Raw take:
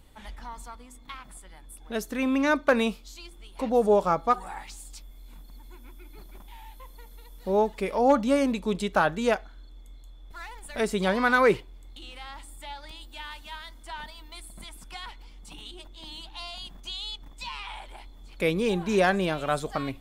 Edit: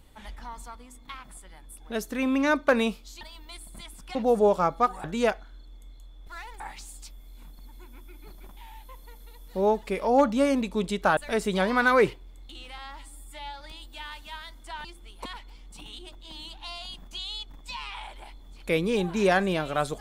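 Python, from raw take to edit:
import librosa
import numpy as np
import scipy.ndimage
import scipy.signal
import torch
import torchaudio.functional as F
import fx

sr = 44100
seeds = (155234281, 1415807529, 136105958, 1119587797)

y = fx.edit(x, sr, fx.swap(start_s=3.21, length_s=0.41, other_s=14.04, other_length_s=0.94),
    fx.move(start_s=9.08, length_s=1.56, to_s=4.51),
    fx.stretch_span(start_s=12.25, length_s=0.55, factor=1.5), tone=tone)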